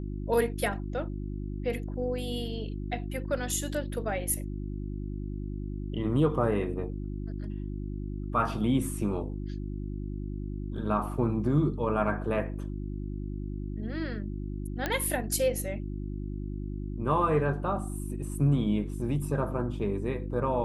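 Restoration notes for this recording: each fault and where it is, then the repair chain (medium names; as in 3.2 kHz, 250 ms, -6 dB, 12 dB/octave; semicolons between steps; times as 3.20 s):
hum 50 Hz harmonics 7 -35 dBFS
14.86 s: pop -14 dBFS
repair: de-click; de-hum 50 Hz, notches 7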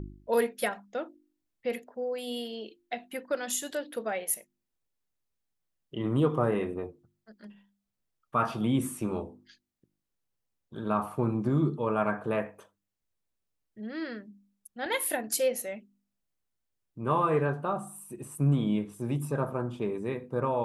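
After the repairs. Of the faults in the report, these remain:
nothing left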